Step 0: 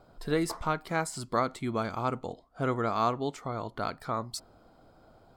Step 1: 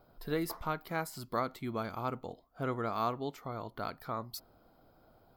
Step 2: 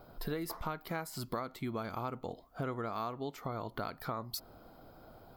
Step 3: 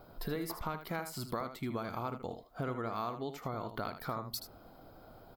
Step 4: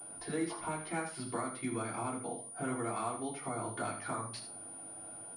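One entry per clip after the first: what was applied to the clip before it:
EQ curve 4800 Hz 0 dB, 8500 Hz -7 dB, 13000 Hz +14 dB; gain -5.5 dB
compressor 6:1, threshold -43 dBFS, peak gain reduction 15 dB; gain +8 dB
echo 78 ms -10 dB
reverb RT60 0.40 s, pre-delay 3 ms, DRR -6 dB; pulse-width modulation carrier 9500 Hz; gain -4.5 dB

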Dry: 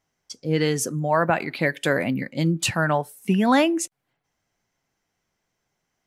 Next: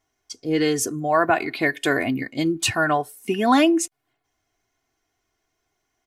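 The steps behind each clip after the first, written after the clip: comb 2.8 ms, depth 76%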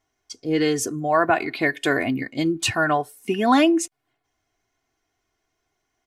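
high shelf 9400 Hz -6 dB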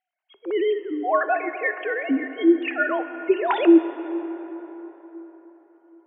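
sine-wave speech; plate-style reverb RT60 4.4 s, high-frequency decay 0.5×, DRR 9.5 dB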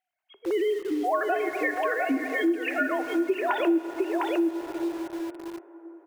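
echo 0.706 s -5 dB; in parallel at -8 dB: bit-crush 6-bit; on the sum: compressor 3:1, threshold -25 dBFS, peak gain reduction 13.5 dB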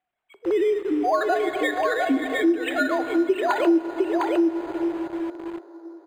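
decimation joined by straight lines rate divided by 8×; gain +4.5 dB

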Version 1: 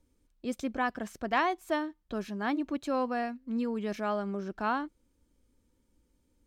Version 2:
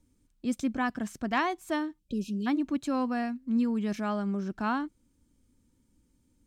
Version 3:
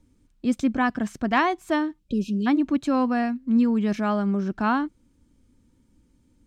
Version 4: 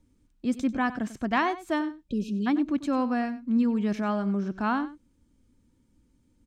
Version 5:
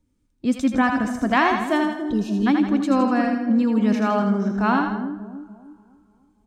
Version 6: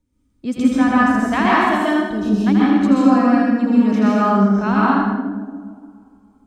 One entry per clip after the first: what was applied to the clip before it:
ten-band EQ 125 Hz +7 dB, 250 Hz +5 dB, 500 Hz -5 dB, 8000 Hz +5 dB; spectral delete 1.99–2.47, 600–2400 Hz
high shelf 6700 Hz -10.5 dB; gain +7 dB
echo 95 ms -15 dB; gain -4 dB
split-band echo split 520 Hz, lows 0.292 s, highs 81 ms, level -5 dB; two-slope reverb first 0.23 s, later 3.6 s, from -18 dB, DRR 17 dB; spectral noise reduction 10 dB; gain +6 dB
plate-style reverb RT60 0.81 s, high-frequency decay 0.6×, pre-delay 0.115 s, DRR -5.5 dB; gain -2.5 dB

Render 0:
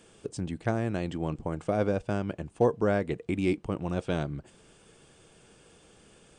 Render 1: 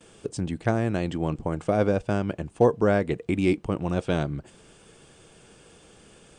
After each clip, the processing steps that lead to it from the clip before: gate with hold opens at -51 dBFS; gain +4.5 dB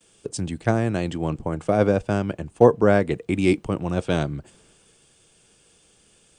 high shelf 8000 Hz +5.5 dB; three-band expander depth 40%; gain +2.5 dB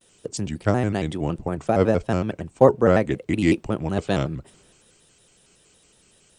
shaped vibrato square 5.4 Hz, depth 160 cents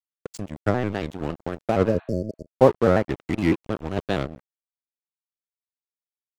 treble ducked by the level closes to 2000 Hz, closed at -13 dBFS; crossover distortion -29 dBFS; spectral repair 1.91–2.46, 660–4400 Hz both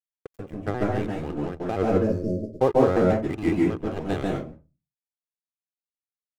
median filter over 9 samples; reverb RT60 0.25 s, pre-delay 0.136 s, DRR -1 dB; gain -6.5 dB

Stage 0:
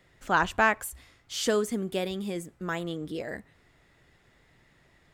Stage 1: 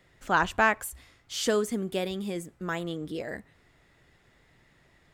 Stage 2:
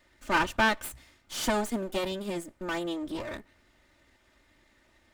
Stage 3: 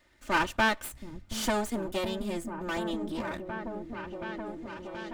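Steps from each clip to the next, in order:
nothing audible
minimum comb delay 3.3 ms
repeats that get brighter 0.726 s, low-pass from 200 Hz, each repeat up 1 oct, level -3 dB; gain -1 dB

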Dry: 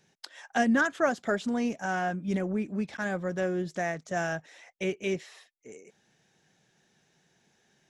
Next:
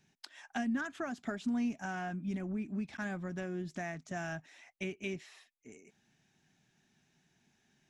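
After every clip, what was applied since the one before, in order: low shelf 130 Hz +8 dB; compressor 6:1, threshold -28 dBFS, peak gain reduction 9 dB; thirty-one-band EQ 250 Hz +6 dB, 500 Hz -12 dB, 2500 Hz +4 dB; gain -6 dB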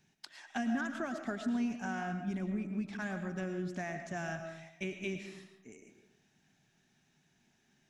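digital reverb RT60 0.84 s, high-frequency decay 0.5×, pre-delay 70 ms, DRR 6.5 dB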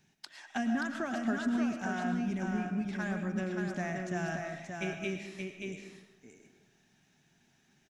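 echo 0.578 s -4.5 dB; gain +2 dB

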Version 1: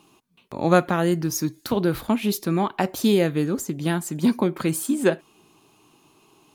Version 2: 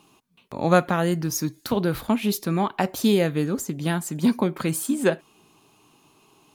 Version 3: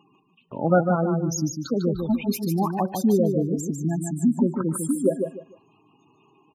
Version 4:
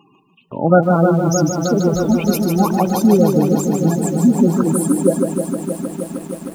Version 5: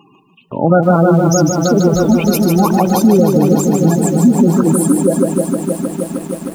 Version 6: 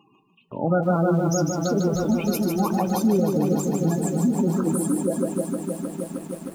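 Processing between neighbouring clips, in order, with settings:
bell 340 Hz -4.5 dB 0.27 oct
spectral gate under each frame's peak -10 dB strong; feedback echo 0.15 s, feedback 25%, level -5.5 dB
lo-fi delay 0.311 s, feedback 80%, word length 8-bit, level -7.5 dB; gain +7 dB
maximiser +6 dB; gain -1 dB
flange 0.39 Hz, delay 8.8 ms, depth 2.9 ms, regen -67%; gain -6.5 dB

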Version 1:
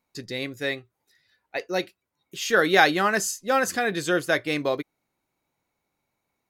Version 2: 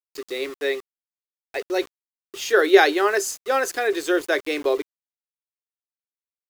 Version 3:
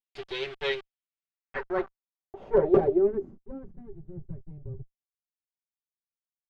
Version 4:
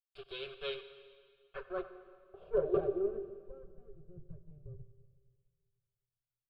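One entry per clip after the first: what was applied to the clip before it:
steep high-pass 290 Hz 48 dB/oct; bell 400 Hz +11 dB 0.28 oct; sample gate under -35.5 dBFS
minimum comb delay 5.2 ms; wrapped overs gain 6.5 dB; low-pass sweep 3200 Hz -> 120 Hz, 0.97–4.03; gain -5.5 dB
fixed phaser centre 1300 Hz, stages 8; on a send at -11.5 dB: reverb RT60 1.9 s, pre-delay 59 ms; on the sum: gain -7.5 dB

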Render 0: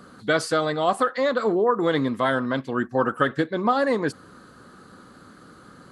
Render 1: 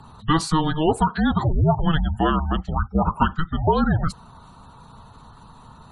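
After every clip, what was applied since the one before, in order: spectral gate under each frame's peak -30 dB strong; frequency shift -320 Hz; gain +2.5 dB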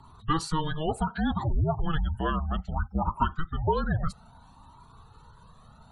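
cascading flanger rising 0.63 Hz; gain -3.5 dB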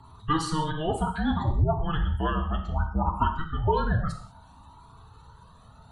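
non-linear reverb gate 0.22 s falling, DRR 3.5 dB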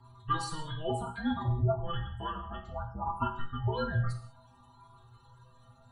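metallic resonator 120 Hz, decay 0.31 s, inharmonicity 0.008; gain +4.5 dB

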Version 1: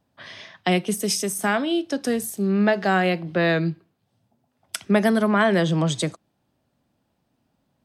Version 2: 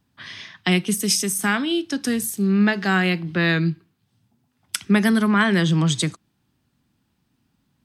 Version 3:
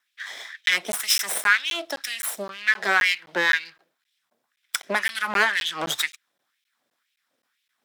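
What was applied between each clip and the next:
bell 600 Hz -15 dB 0.98 oct; gain +4.5 dB
minimum comb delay 0.55 ms; LFO high-pass sine 2 Hz 550–2700 Hz; crackling interface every 0.26 s, samples 512, zero, from 0.66

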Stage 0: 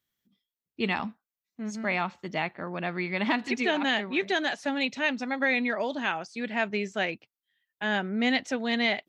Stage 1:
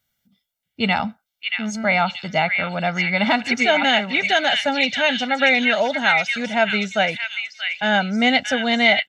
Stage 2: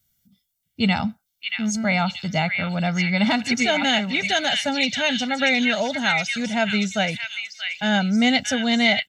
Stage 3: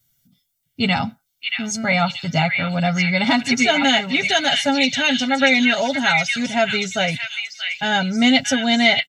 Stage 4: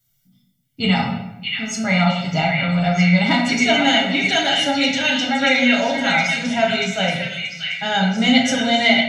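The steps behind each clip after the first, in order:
comb 1.4 ms, depth 74%; on a send: delay with a stepping band-pass 0.63 s, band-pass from 2500 Hz, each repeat 0.7 oct, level -1 dB; on the sum: gain +7.5 dB
tone controls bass +12 dB, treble +12 dB; gain -5 dB
comb 7.3 ms, depth 65%; gain +2 dB
reverb RT60 0.90 s, pre-delay 6 ms, DRR -1 dB; gain -3.5 dB

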